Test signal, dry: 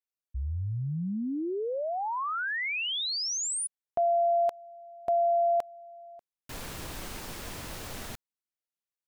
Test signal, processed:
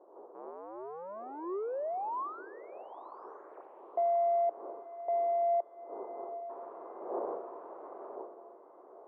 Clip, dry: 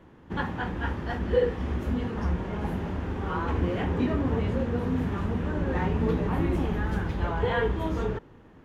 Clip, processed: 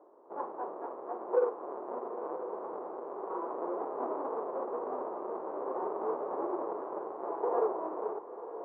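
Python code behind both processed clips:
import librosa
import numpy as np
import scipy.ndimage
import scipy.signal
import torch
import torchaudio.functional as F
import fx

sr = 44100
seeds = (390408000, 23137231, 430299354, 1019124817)

p1 = fx.halfwave_hold(x, sr)
p2 = fx.dmg_wind(p1, sr, seeds[0], corner_hz=480.0, level_db=-39.0)
p3 = scipy.signal.sosfilt(scipy.signal.cheby1(3, 1.0, [370.0, 1100.0], 'bandpass', fs=sr, output='sos'), p2)
p4 = p3 + fx.echo_diffused(p3, sr, ms=960, feedback_pct=47, wet_db=-12.5, dry=0)
y = p4 * librosa.db_to_amplitude(-5.5)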